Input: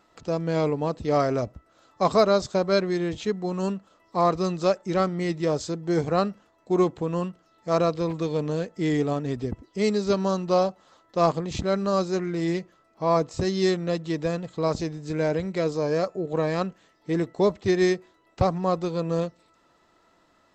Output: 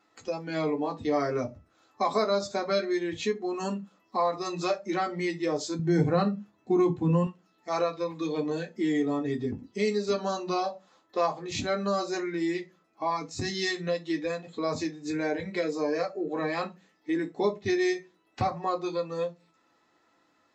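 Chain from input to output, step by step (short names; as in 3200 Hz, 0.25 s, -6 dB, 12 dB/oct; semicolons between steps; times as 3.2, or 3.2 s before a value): 13.1–13.87 bell 600 Hz -6 dB 1.9 oct; reverb RT60 0.25 s, pre-delay 3 ms, DRR 1 dB; compressor 2:1, threshold -30 dBFS, peak gain reduction 11.5 dB; 5.79–7.27 bell 110 Hz +13 dB 1.8 oct; spectral noise reduction 10 dB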